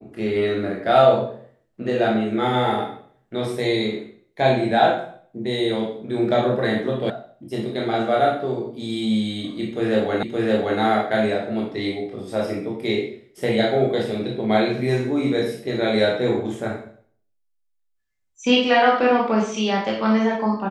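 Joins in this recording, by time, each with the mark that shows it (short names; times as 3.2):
7.1 sound cut off
10.23 repeat of the last 0.57 s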